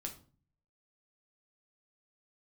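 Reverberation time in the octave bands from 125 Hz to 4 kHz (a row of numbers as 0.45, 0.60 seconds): 0.80, 0.65, 0.45, 0.40, 0.30, 0.30 seconds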